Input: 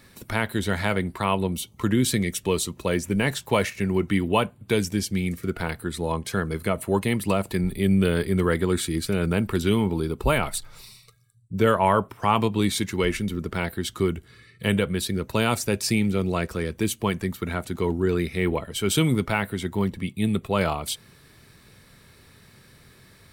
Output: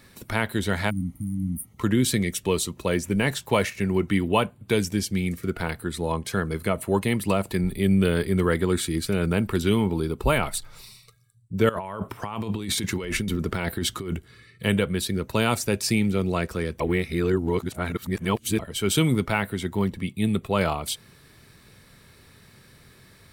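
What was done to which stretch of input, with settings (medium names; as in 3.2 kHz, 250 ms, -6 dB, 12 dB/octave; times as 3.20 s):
0.92–1.71 s: spectral replace 310–8600 Hz after
11.69–14.17 s: compressor with a negative ratio -29 dBFS
16.80–18.59 s: reverse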